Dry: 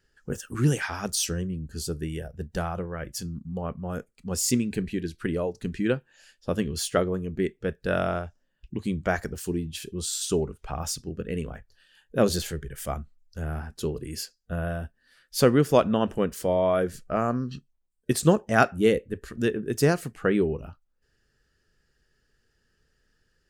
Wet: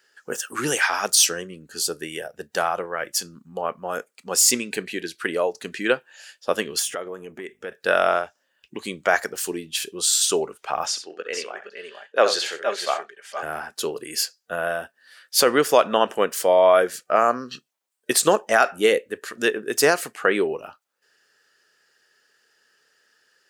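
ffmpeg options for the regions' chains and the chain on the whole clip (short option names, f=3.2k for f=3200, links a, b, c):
-filter_complex "[0:a]asettb=1/sr,asplit=3[a][b][c];[a]atrim=end=6.794[d];[b]atrim=start=6.79:end=7.72,asetpts=PTS-STARTPTS,afade=t=in:d=0.004:c=qsin,afade=t=out:st=0.926:d=0.004:c=qsin,equalizer=f=4.3k:w=5.6:g=-14,acompressor=threshold=-31dB:ratio=16:attack=3.2:release=140:knee=1:detection=peak,aeval=exprs='val(0)+0.00251*(sin(2*PI*50*n/s)+sin(2*PI*2*50*n/s)/2+sin(2*PI*3*50*n/s)/3+sin(2*PI*4*50*n/s)/4+sin(2*PI*5*50*n/s)/5)':c=same[e];[c]atrim=start=7.716[f];[d][e]acrossfade=d=0.004:c1=hsin:c2=qsin[g];[g][f]acrossfade=d=0.004:c1=qsin:c2=hsin,asettb=1/sr,asplit=3[h][i][j];[h]atrim=end=10.864[k];[i]atrim=start=10.86:end=13.43,asetpts=PTS-STARTPTS,afade=t=in:d=0.004:c=qsin,afade=t=out:st=2.566:d=0.004:c=qsin,highpass=440,lowpass=4.9k,aecho=1:1:65|89|465|470:0.299|0.112|0.282|0.335,atrim=end_sample=113337[l];[j]atrim=start=13.426[m];[k][l]acrossfade=d=0.004:c1=hsin:c2=qsin[n];[n][m]acrossfade=d=0.004:c1=qsin:c2=hsin,highpass=610,alimiter=level_in=14.5dB:limit=-1dB:release=50:level=0:latency=1,volume=-3.5dB"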